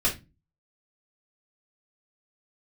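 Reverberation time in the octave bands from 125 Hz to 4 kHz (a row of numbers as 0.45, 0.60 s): 0.50, 0.45, 0.25, 0.20, 0.25, 0.20 s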